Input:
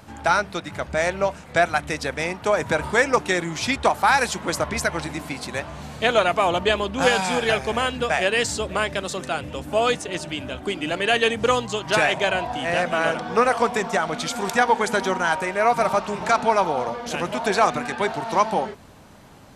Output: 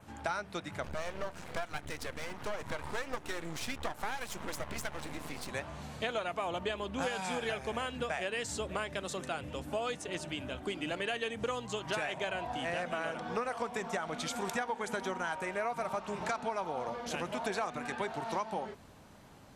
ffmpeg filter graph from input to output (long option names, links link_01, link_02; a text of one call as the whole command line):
ffmpeg -i in.wav -filter_complex "[0:a]asettb=1/sr,asplit=3[link_01][link_02][link_03];[link_01]atrim=end=0.844[link_04];[link_02]atrim=start=0.84:end=5.5,asetpts=PTS-STARTPTS,afade=type=in:duration=0.004:curve=qsin,afade=type=out:start_time=4.656:duration=0.004:curve=qsin,acompressor=mode=upward:threshold=-22dB:ratio=2.5:attack=3.2:release=140:knee=2.83:detection=peak,aeval=exprs='max(val(0),0)':channel_layout=same[link_05];[link_03]atrim=start=5.496[link_06];[link_04][link_05]acrossfade=duration=0.004:curve1=hsin:curve2=qsin[link_07];[link_07][link_06]acrossfade=duration=0.004:curve1=qsin:curve2=hsin,adynamicequalizer=threshold=0.00562:dfrequency=4700:dqfactor=2.7:tfrequency=4700:tqfactor=2.7:attack=5:release=100:ratio=0.375:range=2:mode=cutabove:tftype=bell,acompressor=threshold=-23dB:ratio=6,volume=-8.5dB" out.wav